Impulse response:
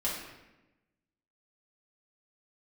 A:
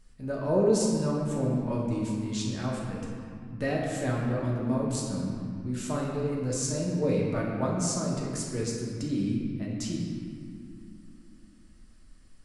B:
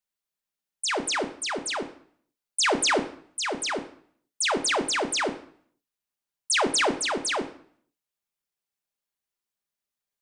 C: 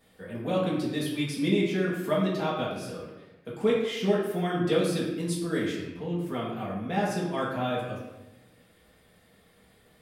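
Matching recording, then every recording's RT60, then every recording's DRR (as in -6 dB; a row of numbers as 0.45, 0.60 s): C; 2.3, 0.55, 1.0 s; -3.5, 5.5, -7.0 dB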